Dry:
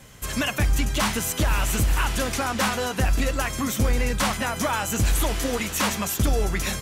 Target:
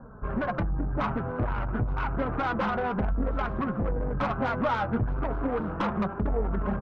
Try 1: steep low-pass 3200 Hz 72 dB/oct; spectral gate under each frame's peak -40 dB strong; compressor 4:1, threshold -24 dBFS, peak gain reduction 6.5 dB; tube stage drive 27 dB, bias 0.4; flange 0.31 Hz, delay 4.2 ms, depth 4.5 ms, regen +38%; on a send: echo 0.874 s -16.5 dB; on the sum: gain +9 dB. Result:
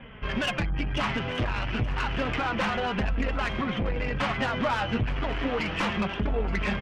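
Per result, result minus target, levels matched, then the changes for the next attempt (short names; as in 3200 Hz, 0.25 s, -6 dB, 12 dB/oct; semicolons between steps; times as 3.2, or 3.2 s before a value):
4000 Hz band +13.0 dB; echo-to-direct +8.5 dB
change: steep low-pass 1500 Hz 72 dB/oct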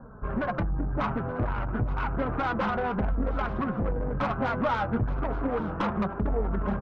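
echo-to-direct +8.5 dB
change: echo 0.874 s -25 dB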